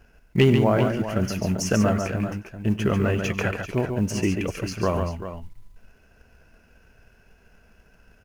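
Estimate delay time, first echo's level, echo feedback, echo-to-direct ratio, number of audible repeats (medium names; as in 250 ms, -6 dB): 95 ms, -18.5 dB, no regular repeats, -4.5 dB, 3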